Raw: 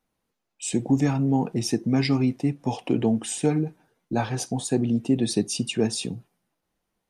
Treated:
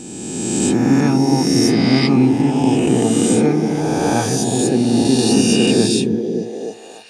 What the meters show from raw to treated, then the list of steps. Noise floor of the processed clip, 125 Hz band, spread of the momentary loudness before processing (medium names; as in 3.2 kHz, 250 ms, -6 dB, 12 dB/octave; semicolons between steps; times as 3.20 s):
-35 dBFS, +7.0 dB, 8 LU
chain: reverse spectral sustain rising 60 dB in 2.14 s; on a send: repeats whose band climbs or falls 288 ms, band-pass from 210 Hz, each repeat 0.7 oct, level -0.5 dB; on the sum: trim +3.5 dB